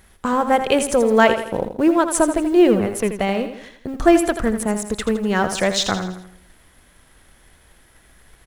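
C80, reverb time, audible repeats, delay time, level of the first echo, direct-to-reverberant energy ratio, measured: no reverb audible, no reverb audible, 4, 82 ms, −9.5 dB, no reverb audible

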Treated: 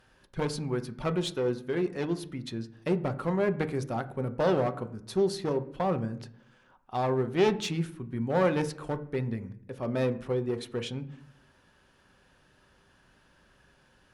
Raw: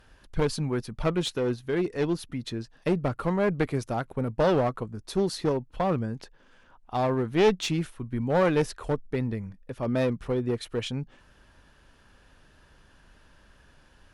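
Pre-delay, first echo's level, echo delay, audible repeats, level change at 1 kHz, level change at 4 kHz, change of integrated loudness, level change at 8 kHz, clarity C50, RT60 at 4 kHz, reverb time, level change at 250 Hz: 5 ms, no echo audible, no echo audible, no echo audible, −2.5 dB, −3.5 dB, −2.5 dB, −3.5 dB, 16.0 dB, 0.50 s, 0.60 s, −3.0 dB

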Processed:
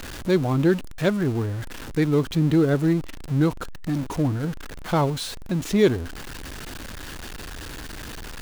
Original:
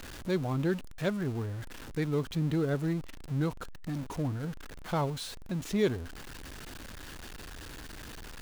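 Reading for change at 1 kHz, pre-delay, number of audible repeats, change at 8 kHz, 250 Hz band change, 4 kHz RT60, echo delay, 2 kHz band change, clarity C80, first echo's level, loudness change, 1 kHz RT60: +8.5 dB, no reverb audible, no echo audible, +8.5 dB, +10.5 dB, no reverb audible, no echo audible, +8.5 dB, no reverb audible, no echo audible, +9.5 dB, no reverb audible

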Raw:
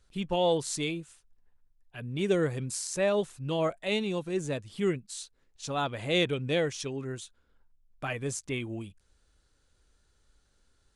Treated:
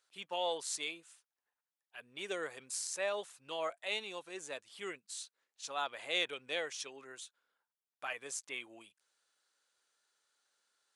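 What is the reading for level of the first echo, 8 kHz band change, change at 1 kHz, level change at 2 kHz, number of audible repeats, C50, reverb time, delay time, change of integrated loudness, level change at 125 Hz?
no echo audible, −4.0 dB, −6.0 dB, −4.0 dB, no echo audible, no reverb audible, no reverb audible, no echo audible, −8.5 dB, −31.5 dB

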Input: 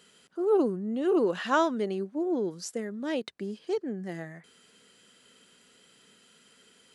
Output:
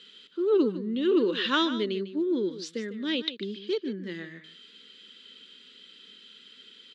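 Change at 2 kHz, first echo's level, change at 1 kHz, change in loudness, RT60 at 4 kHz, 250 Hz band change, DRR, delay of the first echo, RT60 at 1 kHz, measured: +2.5 dB, −12.5 dB, −4.0 dB, +1.5 dB, no reverb audible, +2.0 dB, no reverb audible, 150 ms, no reverb audible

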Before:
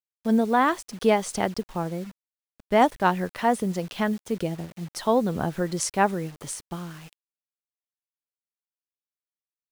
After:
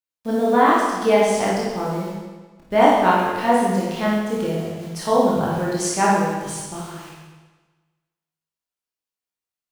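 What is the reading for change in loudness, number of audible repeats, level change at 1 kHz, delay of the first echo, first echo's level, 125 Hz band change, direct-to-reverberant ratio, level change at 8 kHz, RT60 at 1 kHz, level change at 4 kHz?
+5.5 dB, no echo audible, +6.5 dB, no echo audible, no echo audible, +4.0 dB, −7.0 dB, +4.5 dB, 1.3 s, +5.0 dB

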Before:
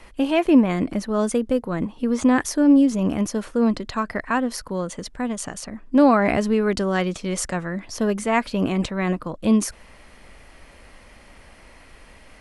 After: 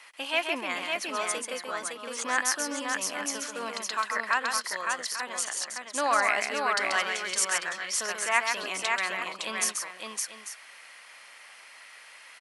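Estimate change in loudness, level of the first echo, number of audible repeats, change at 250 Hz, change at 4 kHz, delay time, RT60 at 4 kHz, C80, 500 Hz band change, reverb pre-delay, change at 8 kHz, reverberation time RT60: −7.0 dB, −5.5 dB, 3, −24.0 dB, +4.0 dB, 135 ms, no reverb audible, no reverb audible, −11.5 dB, no reverb audible, +4.0 dB, no reverb audible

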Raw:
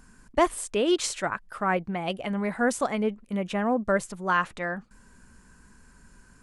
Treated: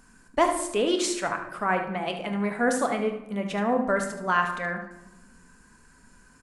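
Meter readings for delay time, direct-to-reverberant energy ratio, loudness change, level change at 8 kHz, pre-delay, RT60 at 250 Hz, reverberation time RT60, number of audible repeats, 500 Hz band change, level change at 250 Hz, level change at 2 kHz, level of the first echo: 74 ms, 4.0 dB, +1.0 dB, +1.0 dB, 3 ms, 1.5 s, 1.0 s, 1, +0.5 dB, 0.0 dB, +1.5 dB, −10.5 dB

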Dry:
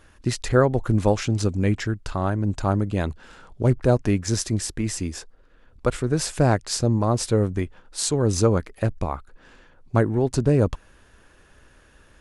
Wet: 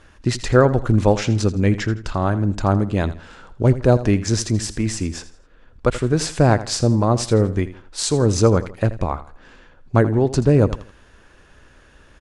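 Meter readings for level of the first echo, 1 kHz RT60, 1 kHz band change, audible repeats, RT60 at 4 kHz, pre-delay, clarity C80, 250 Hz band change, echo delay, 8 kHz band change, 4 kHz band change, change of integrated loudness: −15.0 dB, no reverb audible, +4.0 dB, 3, no reverb audible, no reverb audible, no reverb audible, +4.0 dB, 82 ms, +2.0 dB, +3.5 dB, +4.0 dB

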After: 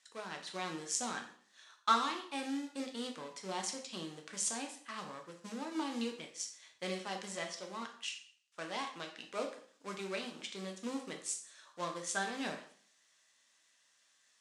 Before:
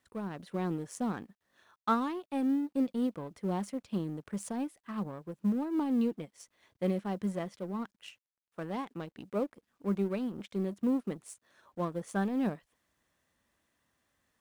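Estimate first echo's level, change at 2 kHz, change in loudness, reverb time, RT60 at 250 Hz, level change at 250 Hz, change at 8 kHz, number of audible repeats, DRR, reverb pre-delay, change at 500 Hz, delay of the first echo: no echo audible, +5.0 dB, −5.0 dB, 0.50 s, 0.55 s, −11.5 dB, +12.0 dB, no echo audible, 2.5 dB, 4 ms, −6.0 dB, no echo audible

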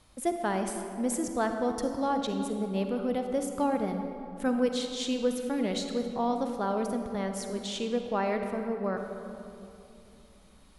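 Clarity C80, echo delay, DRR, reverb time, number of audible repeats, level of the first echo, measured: 6.5 dB, no echo audible, 5.0 dB, 2.8 s, no echo audible, no echo audible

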